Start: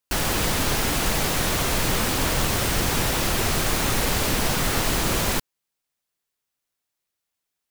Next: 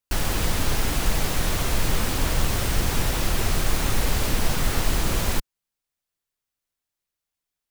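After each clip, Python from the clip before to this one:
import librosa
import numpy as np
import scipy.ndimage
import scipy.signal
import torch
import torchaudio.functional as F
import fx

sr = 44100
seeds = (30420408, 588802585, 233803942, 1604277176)

y = fx.low_shelf(x, sr, hz=78.0, db=11.5)
y = y * 10.0 ** (-4.0 / 20.0)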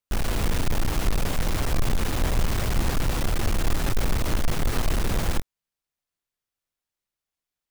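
y = fx.halfwave_hold(x, sr)
y = y * 10.0 ** (-6.0 / 20.0)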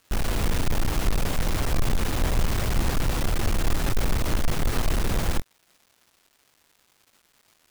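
y = fx.dmg_crackle(x, sr, seeds[0], per_s=530.0, level_db=-47.0)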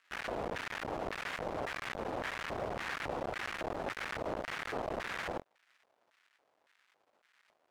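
y = fx.filter_lfo_bandpass(x, sr, shape='square', hz=1.8, low_hz=630.0, high_hz=1800.0, q=1.7)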